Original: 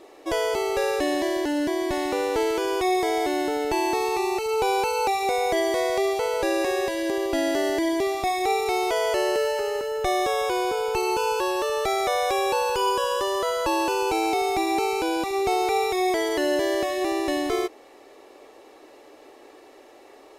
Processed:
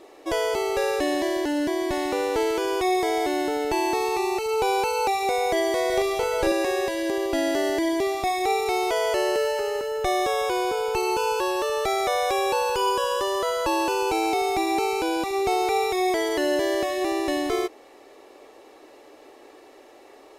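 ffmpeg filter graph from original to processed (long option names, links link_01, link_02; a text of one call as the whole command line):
ffmpeg -i in.wav -filter_complex "[0:a]asettb=1/sr,asplit=3[link_01][link_02][link_03];[link_01]atrim=end=5.864[link_04];[link_02]atrim=start=5.86:end=6.52,asetpts=PTS-STARTPTS,afade=type=in:duration=0.004:curve=qsin,afade=type=out:start_time=0.656:duration=0.004:curve=qsin,lowshelf=frequency=130:gain=8.5,asplit=2[link_05][link_06];[link_06]adelay=40,volume=-5dB[link_07];[link_05][link_07]amix=inputs=2:normalize=0,atrim=end_sample=29106[link_08];[link_03]atrim=start=6.516[link_09];[link_04][link_08]acrossfade=duration=0.004:curve1=hsin:curve2=qsin[link_10];[link_10][link_09]acrossfade=duration=0.004:curve1=qsin:curve2=hsin" out.wav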